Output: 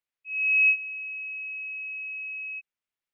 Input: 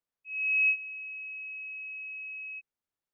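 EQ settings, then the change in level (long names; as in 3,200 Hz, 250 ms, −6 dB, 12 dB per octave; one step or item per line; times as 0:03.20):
parametric band 2,400 Hz +10 dB 1.5 octaves
−5.0 dB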